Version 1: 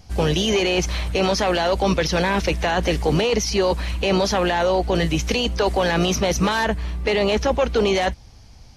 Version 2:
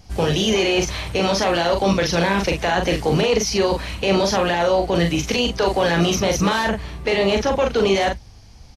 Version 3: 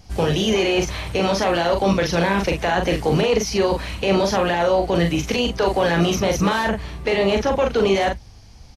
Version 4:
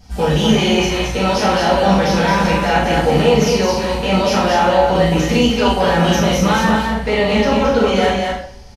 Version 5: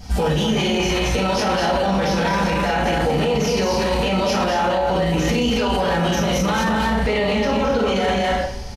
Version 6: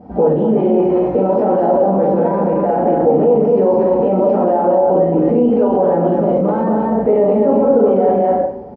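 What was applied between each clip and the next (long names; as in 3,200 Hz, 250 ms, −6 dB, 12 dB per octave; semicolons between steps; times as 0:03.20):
double-tracking delay 41 ms −4.5 dB
dynamic equaliser 5,100 Hz, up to −4 dB, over −34 dBFS, Q 0.75
on a send: single-tap delay 218 ms −4 dB; on the sum: coupled-rooms reverb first 0.48 s, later 1.5 s, from −24 dB, DRR −6.5 dB; level −3.5 dB
in parallel at −2 dB: compressor whose output falls as the input rises −20 dBFS, ratio −1; on the sum: brickwall limiter −11.5 dBFS, peak gain reduction 11 dB
flat-topped band-pass 440 Hz, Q 0.87; spectral tilt −2 dB per octave; level +7 dB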